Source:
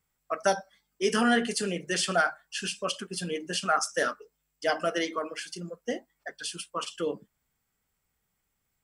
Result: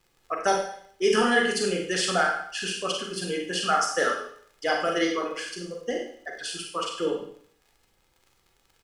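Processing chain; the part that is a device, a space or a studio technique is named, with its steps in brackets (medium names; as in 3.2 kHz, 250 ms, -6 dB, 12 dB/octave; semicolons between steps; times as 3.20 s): vinyl LP (crackle 49 per s -45 dBFS; pink noise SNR 42 dB); treble shelf 8.8 kHz -6.5 dB; comb 2.4 ms, depth 37%; Schroeder reverb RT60 0.59 s, combs from 33 ms, DRR 1 dB; trim +1 dB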